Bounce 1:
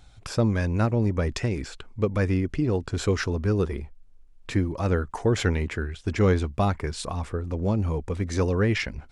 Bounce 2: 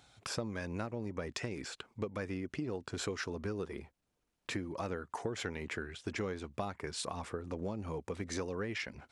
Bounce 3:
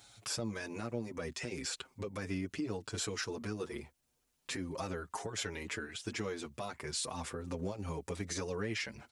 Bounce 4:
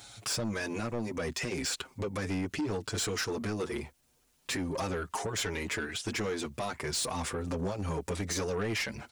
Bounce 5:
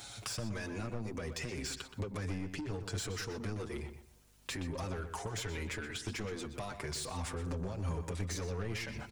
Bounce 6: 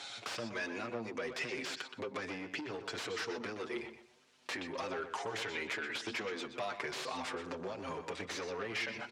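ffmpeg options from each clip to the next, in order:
-af "highpass=100,lowshelf=f=210:g=-8.5,acompressor=threshold=0.0251:ratio=6,volume=0.75"
-filter_complex "[0:a]highshelf=f=3900:g=11.5,alimiter=level_in=1.33:limit=0.0631:level=0:latency=1:release=54,volume=0.75,asplit=2[s0][s1];[s1]adelay=6.8,afreqshift=0.35[s2];[s0][s2]amix=inputs=2:normalize=1,volume=1.41"
-af "asoftclip=type=tanh:threshold=0.015,volume=2.82"
-filter_complex "[0:a]acrossover=split=110[s0][s1];[s1]acompressor=threshold=0.00794:ratio=5[s2];[s0][s2]amix=inputs=2:normalize=0,aeval=exprs='val(0)+0.000398*(sin(2*PI*50*n/s)+sin(2*PI*2*50*n/s)/2+sin(2*PI*3*50*n/s)/3+sin(2*PI*4*50*n/s)/4+sin(2*PI*5*50*n/s)/5)':c=same,asplit=2[s3][s4];[s4]adelay=123,lowpass=f=4000:p=1,volume=0.355,asplit=2[s5][s6];[s6]adelay=123,lowpass=f=4000:p=1,volume=0.26,asplit=2[s7][s8];[s8]adelay=123,lowpass=f=4000:p=1,volume=0.26[s9];[s3][s5][s7][s9]amix=inputs=4:normalize=0,volume=1.26"
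-filter_complex "[0:a]acrossover=split=1800[s0][s1];[s0]flanger=delay=7.3:depth=1.7:regen=61:speed=1.4:shape=triangular[s2];[s1]aeval=exprs='(mod(63.1*val(0)+1,2)-1)/63.1':c=same[s3];[s2][s3]amix=inputs=2:normalize=0,highpass=330,lowpass=4000,volume=2.37"

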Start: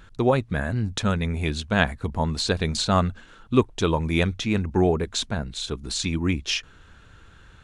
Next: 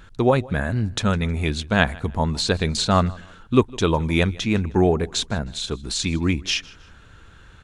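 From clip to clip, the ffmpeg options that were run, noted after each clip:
-af "aecho=1:1:157|314:0.0708|0.0227,volume=1.33"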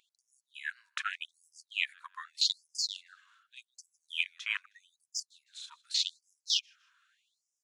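-af "afwtdn=0.0398,afftfilt=real='re*gte(b*sr/1024,940*pow(5000/940,0.5+0.5*sin(2*PI*0.83*pts/sr)))':imag='im*gte(b*sr/1024,940*pow(5000/940,0.5+0.5*sin(2*PI*0.83*pts/sr)))':win_size=1024:overlap=0.75"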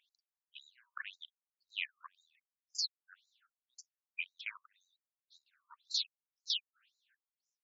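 -af "alimiter=limit=0.106:level=0:latency=1:release=332,afftfilt=real='re*between(b*sr/1024,870*pow(5400/870,0.5+0.5*sin(2*PI*1.9*pts/sr))/1.41,870*pow(5400/870,0.5+0.5*sin(2*PI*1.9*pts/sr))*1.41)':imag='im*between(b*sr/1024,870*pow(5400/870,0.5+0.5*sin(2*PI*1.9*pts/sr))/1.41,870*pow(5400/870,0.5+0.5*sin(2*PI*1.9*pts/sr))*1.41)':win_size=1024:overlap=0.75,volume=0.841"

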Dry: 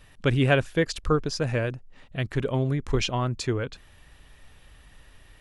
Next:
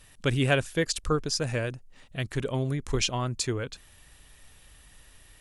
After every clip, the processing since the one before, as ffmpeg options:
-af "equalizer=f=9500:t=o:w=1.8:g=12.5,volume=0.668"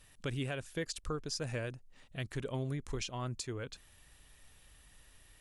-af "alimiter=limit=0.0891:level=0:latency=1:release=314,volume=0.473"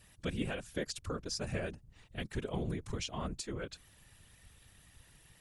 -af "afftfilt=real='hypot(re,im)*cos(2*PI*random(0))':imag='hypot(re,im)*sin(2*PI*random(1))':win_size=512:overlap=0.75,volume=2"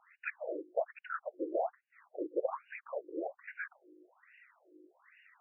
-af "aeval=exprs='val(0)+0.002*(sin(2*PI*50*n/s)+sin(2*PI*2*50*n/s)/2+sin(2*PI*3*50*n/s)/3+sin(2*PI*4*50*n/s)/4+sin(2*PI*5*50*n/s)/5)':c=same,highpass=f=180:t=q:w=0.5412,highpass=f=180:t=q:w=1.307,lowpass=f=3300:t=q:w=0.5176,lowpass=f=3300:t=q:w=0.7071,lowpass=f=3300:t=q:w=1.932,afreqshift=110,afftfilt=real='re*between(b*sr/1024,370*pow(2100/370,0.5+0.5*sin(2*PI*1.2*pts/sr))/1.41,370*pow(2100/370,0.5+0.5*sin(2*PI*1.2*pts/sr))*1.41)':imag='im*between(b*sr/1024,370*pow(2100/370,0.5+0.5*sin(2*PI*1.2*pts/sr))/1.41,370*pow(2100/370,0.5+0.5*sin(2*PI*1.2*pts/sr))*1.41)':win_size=1024:overlap=0.75,volume=2.66"

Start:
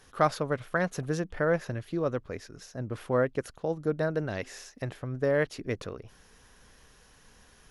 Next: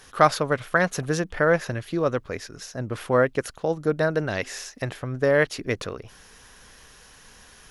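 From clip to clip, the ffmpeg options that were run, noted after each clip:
-af "tiltshelf=f=770:g=-3,volume=2.24"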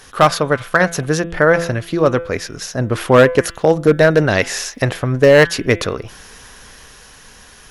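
-af "bandreject=f=169.2:t=h:w=4,bandreject=f=338.4:t=h:w=4,bandreject=f=507.6:t=h:w=4,bandreject=f=676.8:t=h:w=4,bandreject=f=846:t=h:w=4,bandreject=f=1015.2:t=h:w=4,bandreject=f=1184.4:t=h:w=4,bandreject=f=1353.6:t=h:w=4,bandreject=f=1522.8:t=h:w=4,bandreject=f=1692:t=h:w=4,bandreject=f=1861.2:t=h:w=4,bandreject=f=2030.4:t=h:w=4,bandreject=f=2199.6:t=h:w=4,bandreject=f=2368.8:t=h:w=4,bandreject=f=2538:t=h:w=4,bandreject=f=2707.2:t=h:w=4,bandreject=f=2876.4:t=h:w=4,bandreject=f=3045.6:t=h:w=4,bandreject=f=3214.8:t=h:w=4,bandreject=f=3384:t=h:w=4,bandreject=f=3553.2:t=h:w=4,bandreject=f=3722.4:t=h:w=4,dynaudnorm=f=350:g=11:m=2,volume=3.35,asoftclip=hard,volume=0.299,volume=2.37"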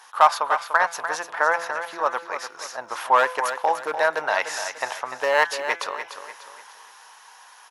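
-filter_complex "[0:a]highpass=f=900:t=q:w=5,asplit=2[s0][s1];[s1]aecho=0:1:295|590|885|1180:0.335|0.134|0.0536|0.0214[s2];[s0][s2]amix=inputs=2:normalize=0,volume=0.355"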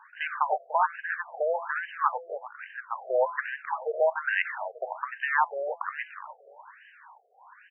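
-af "afftfilt=real='re*between(b*sr/1024,510*pow(2200/510,0.5+0.5*sin(2*PI*1.2*pts/sr))/1.41,510*pow(2200/510,0.5+0.5*sin(2*PI*1.2*pts/sr))*1.41)':imag='im*between(b*sr/1024,510*pow(2200/510,0.5+0.5*sin(2*PI*1.2*pts/sr))/1.41,510*pow(2200/510,0.5+0.5*sin(2*PI*1.2*pts/sr))*1.41)':win_size=1024:overlap=0.75"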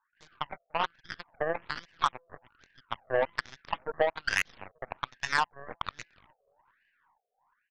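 -af "dynaudnorm=f=620:g=3:m=2.51,aeval=exprs='0.668*(cos(1*acos(clip(val(0)/0.668,-1,1)))-cos(1*PI/2))+0.0944*(cos(3*acos(clip(val(0)/0.668,-1,1)))-cos(3*PI/2))+0.0188*(cos(6*acos(clip(val(0)/0.668,-1,1)))-cos(6*PI/2))+0.0596*(cos(7*acos(clip(val(0)/0.668,-1,1)))-cos(7*PI/2))':c=same,acompressor=threshold=0.0794:ratio=6"

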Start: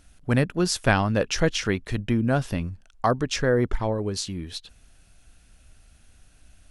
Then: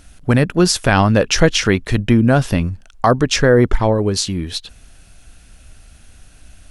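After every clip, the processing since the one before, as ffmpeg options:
-af "alimiter=level_in=3.76:limit=0.891:release=50:level=0:latency=1,volume=0.891"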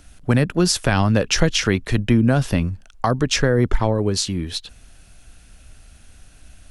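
-filter_complex "[0:a]acrossover=split=220|3000[s0][s1][s2];[s1]acompressor=threshold=0.2:ratio=6[s3];[s0][s3][s2]amix=inputs=3:normalize=0,volume=0.75"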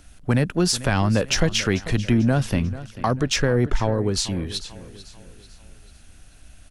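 -filter_complex "[0:a]aecho=1:1:442|884|1326|1768:0.141|0.0622|0.0273|0.012,asplit=2[s0][s1];[s1]asoftclip=type=tanh:threshold=0.178,volume=0.473[s2];[s0][s2]amix=inputs=2:normalize=0,volume=0.562"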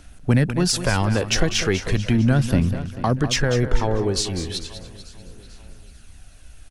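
-af "aphaser=in_gain=1:out_gain=1:delay=2.7:decay=0.35:speed=0.36:type=sinusoidal,aecho=1:1:198:0.282"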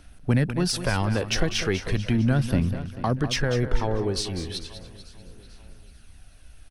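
-af "equalizer=f=7100:w=4.1:g=-8.5,volume=0.631"

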